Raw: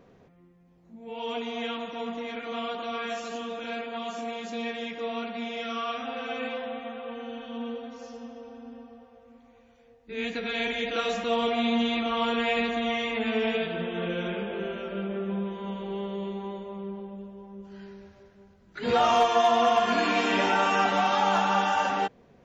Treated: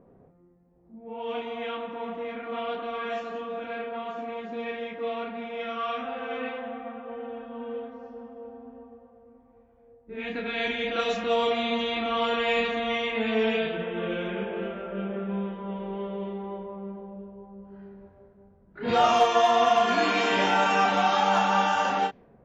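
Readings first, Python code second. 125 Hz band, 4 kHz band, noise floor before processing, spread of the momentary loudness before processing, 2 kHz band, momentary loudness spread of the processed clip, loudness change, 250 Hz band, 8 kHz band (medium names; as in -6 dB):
0.0 dB, +0.5 dB, -58 dBFS, 19 LU, +1.0 dB, 18 LU, +1.0 dB, -1.5 dB, no reading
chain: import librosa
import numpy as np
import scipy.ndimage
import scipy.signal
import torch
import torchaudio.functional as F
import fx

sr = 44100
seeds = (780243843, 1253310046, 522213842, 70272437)

y = fx.doubler(x, sr, ms=32.0, db=-5.0)
y = fx.env_lowpass(y, sr, base_hz=850.0, full_db=-19.5)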